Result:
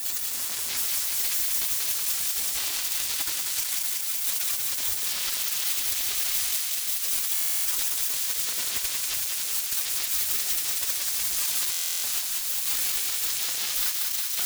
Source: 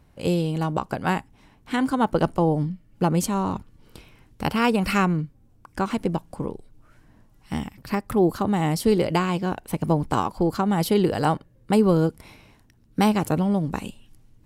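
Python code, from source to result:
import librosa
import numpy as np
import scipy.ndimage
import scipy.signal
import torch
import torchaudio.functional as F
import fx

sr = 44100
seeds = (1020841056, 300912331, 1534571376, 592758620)

p1 = np.sign(x) * np.sqrt(np.mean(np.square(x)))
p2 = scipy.signal.sosfilt(scipy.signal.butter(2, 140.0, 'highpass', fs=sr, output='sos'), p1)
p3 = fx.spec_gate(p2, sr, threshold_db=-30, keep='weak')
p4 = fx.over_compress(p3, sr, threshold_db=-44.0, ratio=-0.5)
p5 = fx.leveller(p4, sr, passes=5)
p6 = p5 + fx.echo_thinned(p5, sr, ms=187, feedback_pct=84, hz=670.0, wet_db=-3.5, dry=0)
y = fx.buffer_glitch(p6, sr, at_s=(7.33, 11.71), block=1024, repeats=13)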